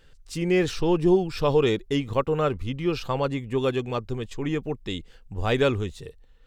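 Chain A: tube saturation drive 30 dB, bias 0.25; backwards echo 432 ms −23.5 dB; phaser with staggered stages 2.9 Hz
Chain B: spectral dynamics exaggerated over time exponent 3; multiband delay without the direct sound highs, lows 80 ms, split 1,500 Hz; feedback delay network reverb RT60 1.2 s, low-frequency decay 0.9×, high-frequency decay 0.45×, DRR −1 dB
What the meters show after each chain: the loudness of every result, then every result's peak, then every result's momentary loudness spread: −37.5, −27.5 LKFS; −24.5, −7.0 dBFS; 8, 18 LU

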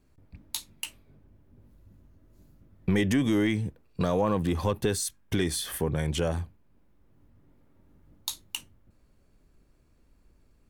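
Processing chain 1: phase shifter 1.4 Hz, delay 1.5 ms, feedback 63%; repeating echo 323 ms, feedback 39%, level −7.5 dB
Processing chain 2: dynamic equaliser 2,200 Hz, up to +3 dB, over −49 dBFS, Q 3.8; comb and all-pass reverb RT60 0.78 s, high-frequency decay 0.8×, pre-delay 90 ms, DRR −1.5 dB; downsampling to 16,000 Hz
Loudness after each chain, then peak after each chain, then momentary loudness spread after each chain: −26.0, −26.5 LKFS; −7.5, −10.5 dBFS; 21, 17 LU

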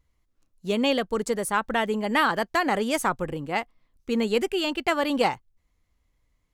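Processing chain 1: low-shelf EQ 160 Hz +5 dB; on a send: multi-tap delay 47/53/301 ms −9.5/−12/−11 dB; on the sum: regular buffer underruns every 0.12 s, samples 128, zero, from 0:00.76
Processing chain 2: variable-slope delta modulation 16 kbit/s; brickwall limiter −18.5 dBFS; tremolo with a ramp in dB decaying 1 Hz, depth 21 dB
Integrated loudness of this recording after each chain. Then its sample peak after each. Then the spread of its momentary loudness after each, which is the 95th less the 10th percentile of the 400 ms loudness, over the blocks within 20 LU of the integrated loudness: −24.0, −35.5 LKFS; −7.5, −18.5 dBFS; 9, 14 LU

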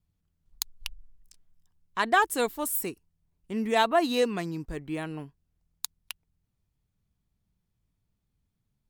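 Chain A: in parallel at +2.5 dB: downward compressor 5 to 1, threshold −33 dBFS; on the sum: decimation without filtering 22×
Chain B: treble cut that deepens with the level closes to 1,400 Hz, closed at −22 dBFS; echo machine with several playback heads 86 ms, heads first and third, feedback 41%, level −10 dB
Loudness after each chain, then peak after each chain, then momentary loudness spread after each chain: −25.5, −29.5 LKFS; −8.5, −8.5 dBFS; 18, 18 LU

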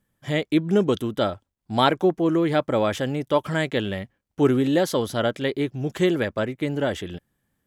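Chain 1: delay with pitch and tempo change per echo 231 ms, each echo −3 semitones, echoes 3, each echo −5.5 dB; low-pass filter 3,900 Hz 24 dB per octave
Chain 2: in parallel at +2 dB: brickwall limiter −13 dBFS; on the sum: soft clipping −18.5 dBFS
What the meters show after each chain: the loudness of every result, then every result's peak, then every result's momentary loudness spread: −22.5, −23.5 LKFS; −3.5, −18.5 dBFS; 7, 5 LU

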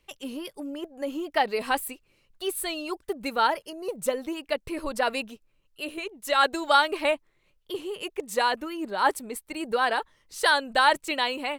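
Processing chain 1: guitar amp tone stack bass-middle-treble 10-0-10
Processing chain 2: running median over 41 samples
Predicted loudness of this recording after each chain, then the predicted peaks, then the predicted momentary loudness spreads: −33.5, −34.0 LKFS; −12.0, −16.0 dBFS; 18, 9 LU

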